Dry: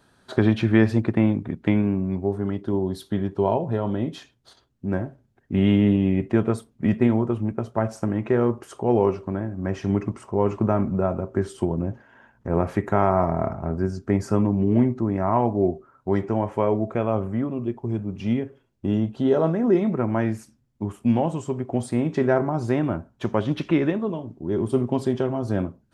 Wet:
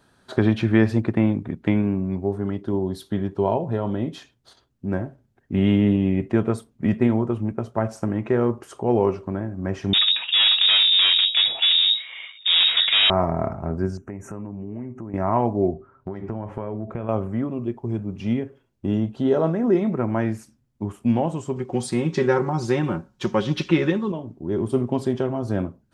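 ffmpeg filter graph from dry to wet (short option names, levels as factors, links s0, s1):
-filter_complex "[0:a]asettb=1/sr,asplit=3[s0][s1][s2];[s0]atrim=end=9.934[s3];[s1]atrim=start=9.93:end=13.1,asetpts=PTS-STARTPTS,afade=t=in:d=0.004:c=qsin,afade=t=out:st=3.166:d=0.004:c=qsin,aeval=exprs='(tanh(39.8*val(0)+0.55)-tanh(0.55))/39.8':c=same,aeval=exprs='0.224*sin(PI/2*5.01*val(0)/0.224)':c=same,lowpass=f=3200:t=q:w=0.5098,lowpass=f=3200:t=q:w=0.6013,lowpass=f=3200:t=q:w=0.9,lowpass=f=3200:t=q:w=2.563,afreqshift=-3800[s4];[s2]atrim=start=13.096[s5];[s3][s4]acrossfade=d=0.004:c1=hsin:c2=qsin[s6];[s6][s5]acrossfade=d=0.004:c1=qsin:c2=hsin,asettb=1/sr,asplit=3[s7][s8][s9];[s7]atrim=end=13.974[s10];[s8]atrim=start=13.97:end=15.14,asetpts=PTS-STARTPTS,afade=t=in:d=0.004:c=qsin,afade=t=out:st=1.166:d=0.004:c=qsin,acompressor=threshold=0.02:ratio=3:attack=3.2:release=140:knee=1:detection=peak,asuperstop=centerf=4100:order=20:qfactor=1.5[s11];[s9]atrim=start=15.136[s12];[s10][s11]acrossfade=d=0.004:c1=hsin:c2=qsin[s13];[s13][s12]acrossfade=d=0.004:c1=qsin:c2=hsin,asettb=1/sr,asplit=3[s14][s15][s16];[s14]atrim=end=15.734[s17];[s15]atrim=start=15.73:end=17.09,asetpts=PTS-STARTPTS,afade=t=in:d=0.004:c=qsin,afade=t=out:st=1.356:d=0.004:c=qsin,bass=f=250:g=6,treble=f=4000:g=-10,acompressor=threshold=0.0631:ratio=10:attack=3.2:release=140:knee=1:detection=peak,bandreject=f=98.57:t=h:w=4,bandreject=f=197.14:t=h:w=4,bandreject=f=295.71:t=h:w=4,bandreject=f=394.28:t=h:w=4,bandreject=f=492.85:t=h:w=4,bandreject=f=591.42:t=h:w=4,bandreject=f=689.99:t=h:w=4,bandreject=f=788.56:t=h:w=4,bandreject=f=887.13:t=h:w=4[s18];[s16]atrim=start=17.086[s19];[s17][s18]acrossfade=d=0.004:c1=hsin:c2=qsin[s20];[s20][s19]acrossfade=d=0.004:c1=qsin:c2=hsin,asettb=1/sr,asplit=3[s21][s22][s23];[s21]atrim=end=21.564[s24];[s22]atrim=start=21.56:end=24.12,asetpts=PTS-STARTPTS,afade=t=in:d=0.004:c=qsin,afade=t=out:st=2.556:d=0.004:c=qsin,asuperstop=centerf=650:order=4:qfactor=4.6,equalizer=f=5000:w=0.71:g=9.5,aecho=1:1:5.5:0.53,atrim=end_sample=112896[s25];[s23]atrim=start=24.116[s26];[s24][s25]acrossfade=d=0.004:c1=hsin:c2=qsin[s27];[s27][s26]acrossfade=d=0.004:c1=qsin:c2=hsin"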